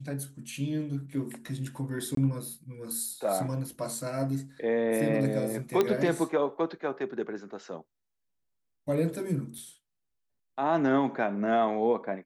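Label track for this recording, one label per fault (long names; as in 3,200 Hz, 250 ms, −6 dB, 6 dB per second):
2.150000	2.170000	drop-out 23 ms
5.810000	5.810000	click −12 dBFS
9.580000	9.580000	drop-out 3.7 ms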